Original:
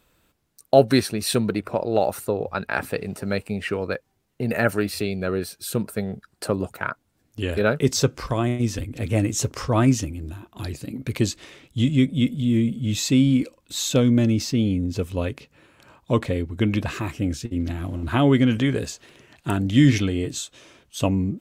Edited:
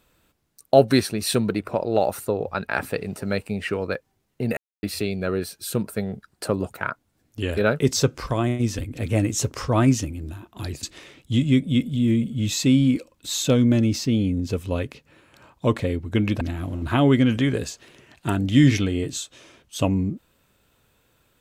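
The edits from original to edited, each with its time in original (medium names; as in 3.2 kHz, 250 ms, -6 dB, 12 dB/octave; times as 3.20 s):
4.57–4.83 s: mute
10.83–11.29 s: delete
16.87–17.62 s: delete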